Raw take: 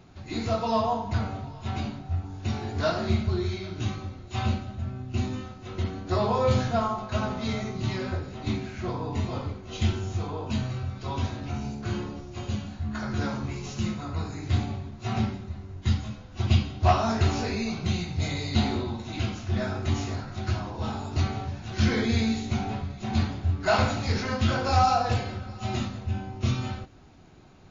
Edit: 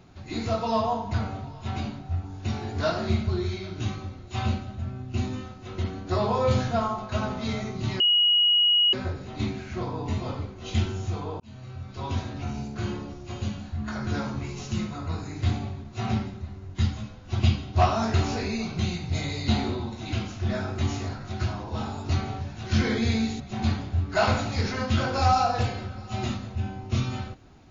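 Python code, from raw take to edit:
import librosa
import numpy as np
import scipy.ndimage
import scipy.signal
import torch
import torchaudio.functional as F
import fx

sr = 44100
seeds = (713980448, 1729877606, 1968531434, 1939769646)

y = fx.edit(x, sr, fx.insert_tone(at_s=8.0, length_s=0.93, hz=2900.0, db=-17.0),
    fx.fade_in_span(start_s=10.47, length_s=0.74),
    fx.cut(start_s=22.47, length_s=0.44), tone=tone)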